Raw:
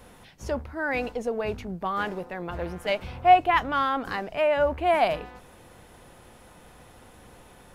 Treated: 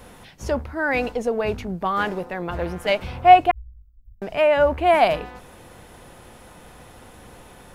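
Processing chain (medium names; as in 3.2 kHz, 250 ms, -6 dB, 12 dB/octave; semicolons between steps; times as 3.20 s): 3.51–4.22 s: inverse Chebyshev band-stop 350–7300 Hz, stop band 80 dB; trim +5.5 dB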